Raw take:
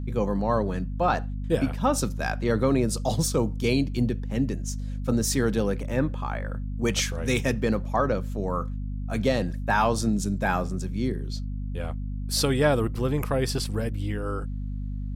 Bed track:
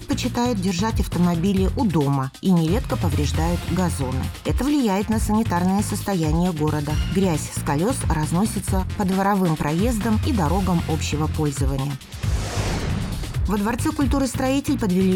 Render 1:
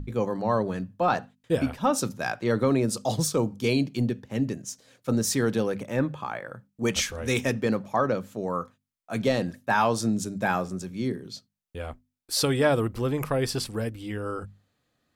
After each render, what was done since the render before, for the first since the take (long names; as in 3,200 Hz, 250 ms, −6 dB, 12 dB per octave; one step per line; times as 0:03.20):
mains-hum notches 50/100/150/200/250 Hz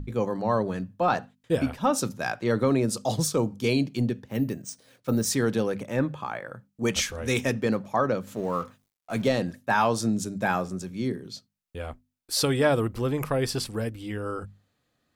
0:04.28–0:05.26: bad sample-rate conversion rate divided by 3×, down filtered, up hold
0:08.27–0:09.28: mu-law and A-law mismatch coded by mu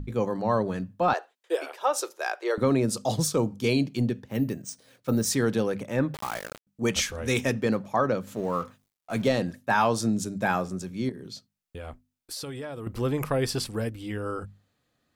0:01.13–0:02.58: elliptic high-pass filter 360 Hz
0:06.14–0:06.67: bit-depth reduction 6 bits, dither none
0:11.09–0:12.87: downward compressor, threshold −34 dBFS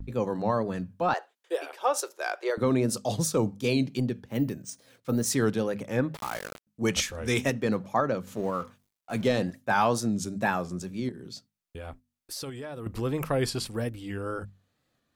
shaped tremolo saw up 2 Hz, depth 30%
tape wow and flutter 81 cents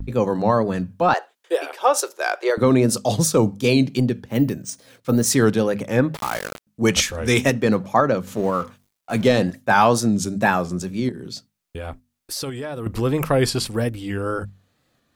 level +8.5 dB